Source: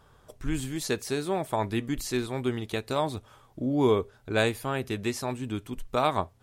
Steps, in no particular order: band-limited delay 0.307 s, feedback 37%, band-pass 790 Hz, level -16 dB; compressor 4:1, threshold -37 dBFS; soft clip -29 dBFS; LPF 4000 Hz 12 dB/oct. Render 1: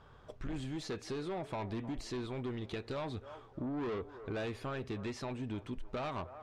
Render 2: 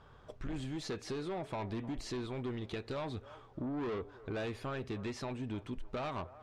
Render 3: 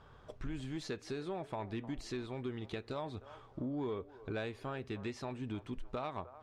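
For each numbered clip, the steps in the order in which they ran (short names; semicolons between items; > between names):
soft clip > band-limited delay > compressor > LPF; soft clip > LPF > compressor > band-limited delay; compressor > band-limited delay > soft clip > LPF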